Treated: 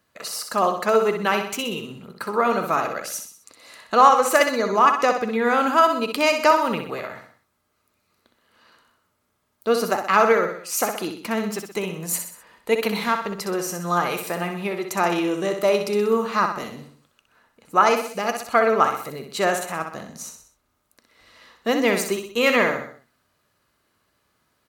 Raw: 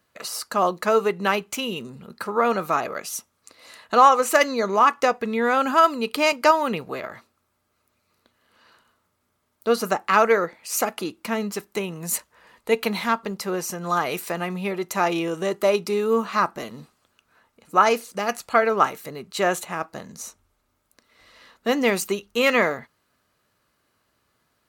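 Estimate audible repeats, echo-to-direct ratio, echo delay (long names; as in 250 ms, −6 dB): 4, −6.0 dB, 63 ms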